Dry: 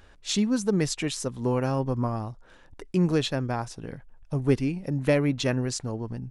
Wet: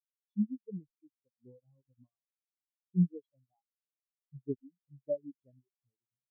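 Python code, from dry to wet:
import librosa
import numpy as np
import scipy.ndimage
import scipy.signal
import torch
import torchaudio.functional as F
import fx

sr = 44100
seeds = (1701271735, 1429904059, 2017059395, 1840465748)

y = fx.dereverb_blind(x, sr, rt60_s=1.2)
y = fx.spectral_expand(y, sr, expansion=4.0)
y = y * 10.0 ** (-7.0 / 20.0)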